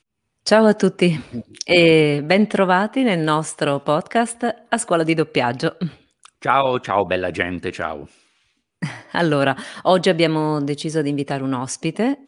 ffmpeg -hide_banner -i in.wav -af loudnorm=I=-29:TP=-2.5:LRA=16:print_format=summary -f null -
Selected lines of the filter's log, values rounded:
Input Integrated:    -19.2 LUFS
Input True Peak:      -1.4 dBTP
Input LRA:             4.9 LU
Input Threshold:     -29.6 LUFS